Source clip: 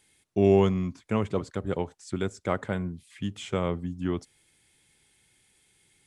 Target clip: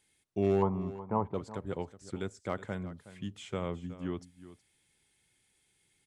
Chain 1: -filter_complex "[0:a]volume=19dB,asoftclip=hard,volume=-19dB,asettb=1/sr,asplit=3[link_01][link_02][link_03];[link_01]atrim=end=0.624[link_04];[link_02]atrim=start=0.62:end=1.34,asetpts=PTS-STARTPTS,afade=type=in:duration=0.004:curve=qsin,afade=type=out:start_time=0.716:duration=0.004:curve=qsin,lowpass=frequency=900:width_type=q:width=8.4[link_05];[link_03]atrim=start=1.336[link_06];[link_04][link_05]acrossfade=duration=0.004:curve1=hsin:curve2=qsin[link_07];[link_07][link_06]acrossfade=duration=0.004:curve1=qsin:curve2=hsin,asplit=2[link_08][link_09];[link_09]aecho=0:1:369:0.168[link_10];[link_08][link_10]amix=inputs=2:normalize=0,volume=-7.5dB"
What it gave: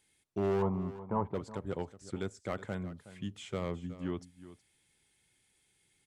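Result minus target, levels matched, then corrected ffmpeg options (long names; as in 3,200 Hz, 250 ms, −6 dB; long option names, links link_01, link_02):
gain into a clipping stage and back: distortion +15 dB
-filter_complex "[0:a]volume=12.5dB,asoftclip=hard,volume=-12.5dB,asettb=1/sr,asplit=3[link_01][link_02][link_03];[link_01]atrim=end=0.624[link_04];[link_02]atrim=start=0.62:end=1.34,asetpts=PTS-STARTPTS,afade=type=in:duration=0.004:curve=qsin,afade=type=out:start_time=0.716:duration=0.004:curve=qsin,lowpass=frequency=900:width_type=q:width=8.4[link_05];[link_03]atrim=start=1.336[link_06];[link_04][link_05]acrossfade=duration=0.004:curve1=hsin:curve2=qsin[link_07];[link_07][link_06]acrossfade=duration=0.004:curve1=qsin:curve2=hsin,asplit=2[link_08][link_09];[link_09]aecho=0:1:369:0.168[link_10];[link_08][link_10]amix=inputs=2:normalize=0,volume=-7.5dB"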